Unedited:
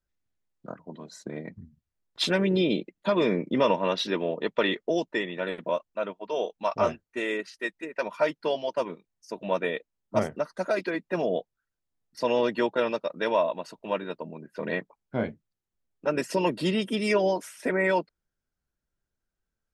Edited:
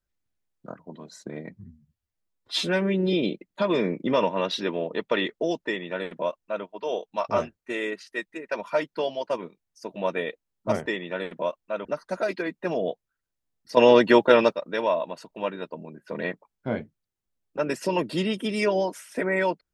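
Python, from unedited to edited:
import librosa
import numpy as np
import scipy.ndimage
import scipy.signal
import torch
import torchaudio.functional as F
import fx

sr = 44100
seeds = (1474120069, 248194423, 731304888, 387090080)

y = fx.edit(x, sr, fx.stretch_span(start_s=1.54, length_s=1.06, factor=1.5),
    fx.duplicate(start_s=5.13, length_s=0.99, to_s=10.33),
    fx.clip_gain(start_s=12.25, length_s=0.76, db=9.0), tone=tone)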